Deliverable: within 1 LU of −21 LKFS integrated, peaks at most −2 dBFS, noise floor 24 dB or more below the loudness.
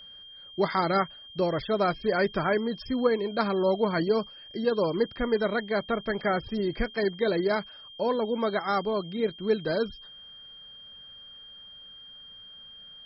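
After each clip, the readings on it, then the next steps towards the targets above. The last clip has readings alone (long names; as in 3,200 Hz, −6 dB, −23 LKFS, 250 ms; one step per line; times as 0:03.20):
interfering tone 3,200 Hz; level of the tone −45 dBFS; integrated loudness −27.5 LKFS; sample peak −11.0 dBFS; target loudness −21.0 LKFS
→ notch filter 3,200 Hz, Q 30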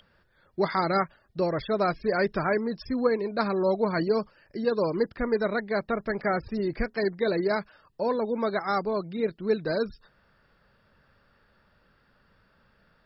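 interfering tone none found; integrated loudness −28.0 LKFS; sample peak −11.0 dBFS; target loudness −21.0 LKFS
→ level +7 dB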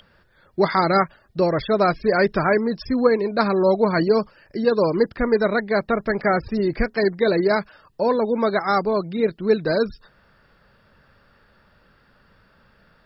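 integrated loudness −21.0 LKFS; sample peak −4.0 dBFS; background noise floor −58 dBFS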